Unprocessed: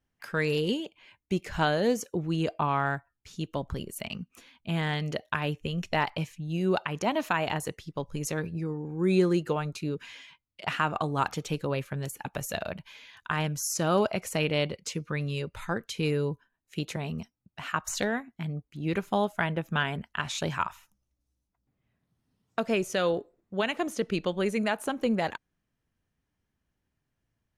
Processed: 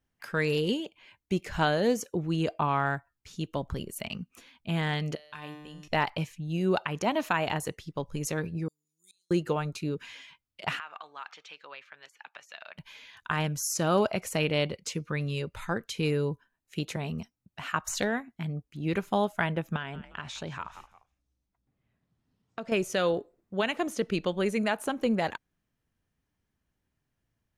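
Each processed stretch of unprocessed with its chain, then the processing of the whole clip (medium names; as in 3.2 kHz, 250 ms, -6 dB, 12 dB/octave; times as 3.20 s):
5.15–5.88 s: peaking EQ 8.5 kHz +9 dB 2.9 oct + hum notches 50/100/150 Hz + feedback comb 150 Hz, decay 1.1 s, mix 90%
8.68–9.31 s: inverse Chebyshev high-pass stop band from 1.8 kHz, stop band 50 dB + inverted gate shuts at -40 dBFS, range -25 dB
10.79–12.78 s: high-pass 1.5 kHz + compression 2.5:1, threshold -37 dBFS + distance through air 200 m
19.76–22.72 s: frequency-shifting echo 174 ms, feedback 30%, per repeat -95 Hz, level -20 dB + compression 2:1, threshold -38 dBFS + distance through air 53 m
whole clip: none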